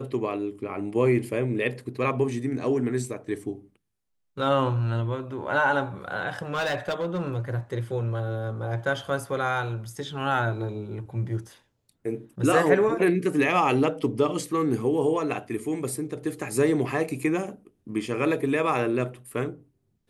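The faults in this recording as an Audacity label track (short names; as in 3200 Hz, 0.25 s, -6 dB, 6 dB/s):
6.420000	7.370000	clipped -23 dBFS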